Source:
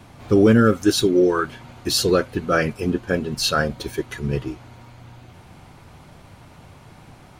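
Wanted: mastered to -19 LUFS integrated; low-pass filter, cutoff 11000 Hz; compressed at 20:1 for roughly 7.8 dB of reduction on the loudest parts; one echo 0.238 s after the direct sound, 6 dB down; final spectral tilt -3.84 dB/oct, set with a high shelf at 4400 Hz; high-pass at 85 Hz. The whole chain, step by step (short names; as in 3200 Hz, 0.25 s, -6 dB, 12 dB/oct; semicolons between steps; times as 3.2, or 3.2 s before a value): HPF 85 Hz; LPF 11000 Hz; high shelf 4400 Hz +8.5 dB; compressor 20:1, threshold -17 dBFS; echo 0.238 s -6 dB; gain +4 dB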